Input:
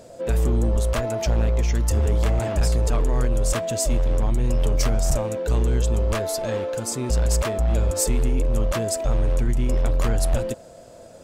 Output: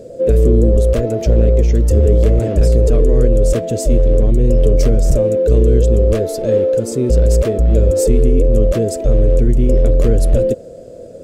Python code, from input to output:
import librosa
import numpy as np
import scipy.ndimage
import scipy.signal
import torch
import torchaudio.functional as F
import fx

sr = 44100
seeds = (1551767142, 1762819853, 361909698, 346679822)

y = fx.low_shelf_res(x, sr, hz=650.0, db=10.0, q=3.0)
y = y * 10.0 ** (-1.5 / 20.0)